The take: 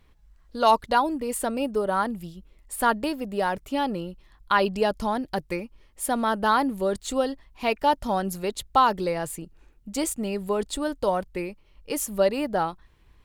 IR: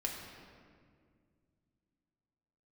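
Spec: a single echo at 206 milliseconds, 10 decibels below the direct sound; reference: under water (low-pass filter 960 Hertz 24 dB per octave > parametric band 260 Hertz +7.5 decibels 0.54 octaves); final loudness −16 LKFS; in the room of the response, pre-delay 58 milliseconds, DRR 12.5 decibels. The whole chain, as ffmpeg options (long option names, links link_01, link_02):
-filter_complex "[0:a]aecho=1:1:206:0.316,asplit=2[link_01][link_02];[1:a]atrim=start_sample=2205,adelay=58[link_03];[link_02][link_03]afir=irnorm=-1:irlink=0,volume=-14.5dB[link_04];[link_01][link_04]amix=inputs=2:normalize=0,lowpass=frequency=960:width=0.5412,lowpass=frequency=960:width=1.3066,equalizer=frequency=260:width_type=o:width=0.54:gain=7.5,volume=9dB"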